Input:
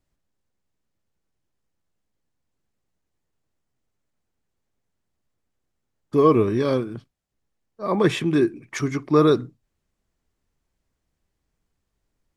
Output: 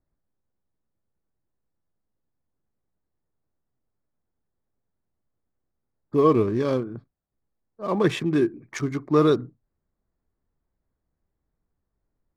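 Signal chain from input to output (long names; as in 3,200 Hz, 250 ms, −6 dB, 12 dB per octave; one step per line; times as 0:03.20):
adaptive Wiener filter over 15 samples
level −2 dB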